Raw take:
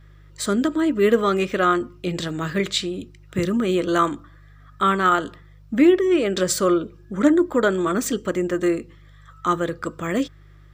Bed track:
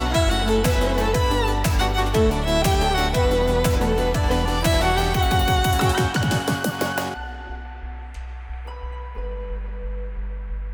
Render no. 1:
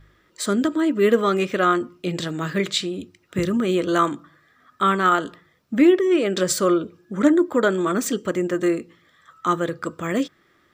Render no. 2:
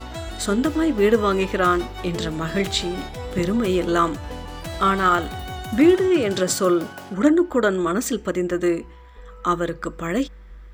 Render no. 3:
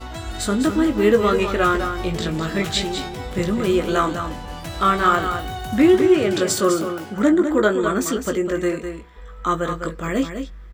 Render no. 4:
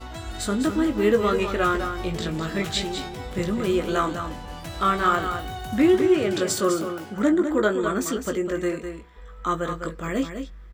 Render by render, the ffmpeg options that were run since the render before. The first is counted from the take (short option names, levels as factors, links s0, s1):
-af "bandreject=f=50:t=h:w=4,bandreject=f=100:t=h:w=4,bandreject=f=150:t=h:w=4"
-filter_complex "[1:a]volume=0.224[s0];[0:a][s0]amix=inputs=2:normalize=0"
-filter_complex "[0:a]asplit=2[s0][s1];[s1]adelay=19,volume=0.473[s2];[s0][s2]amix=inputs=2:normalize=0,asplit=2[s3][s4];[s4]aecho=0:1:204:0.398[s5];[s3][s5]amix=inputs=2:normalize=0"
-af "volume=0.631"